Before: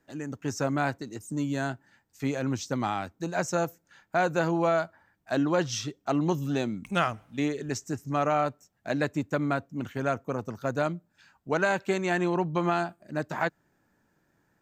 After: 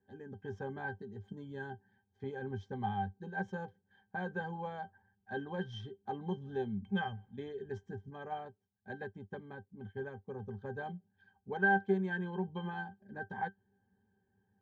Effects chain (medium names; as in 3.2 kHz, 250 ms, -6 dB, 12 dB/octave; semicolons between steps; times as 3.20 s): median filter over 5 samples; pitch-class resonator G, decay 0.11 s; dynamic bell 300 Hz, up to -5 dB, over -51 dBFS, Q 1.3; 8.10–10.40 s: upward expansion 1.5:1, over -59 dBFS; trim +3.5 dB